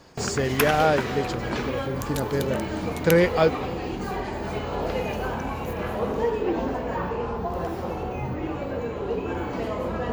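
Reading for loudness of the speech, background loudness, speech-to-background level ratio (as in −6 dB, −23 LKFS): −25.0 LKFS, −29.0 LKFS, 4.0 dB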